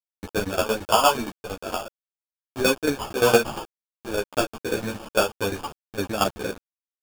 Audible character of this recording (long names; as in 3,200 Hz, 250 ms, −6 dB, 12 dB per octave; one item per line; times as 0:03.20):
aliases and images of a low sample rate 2,000 Hz, jitter 0%
tremolo saw down 8.7 Hz, depth 85%
a quantiser's noise floor 6 bits, dither none
a shimmering, thickened sound